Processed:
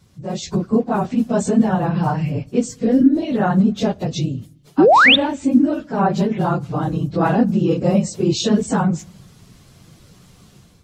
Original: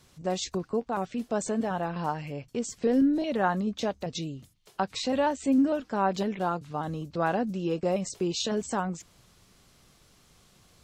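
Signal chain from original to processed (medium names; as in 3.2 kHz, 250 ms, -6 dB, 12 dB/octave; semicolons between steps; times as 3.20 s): phase randomisation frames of 50 ms; peaking EQ 130 Hz +10.5 dB 2.3 oct; painted sound rise, 4.78–5.16 s, 260–3900 Hz -13 dBFS; level rider gain up to 9 dB; on a send: reverberation RT60 0.80 s, pre-delay 4 ms, DRR 23 dB; on the sum: trim -1 dB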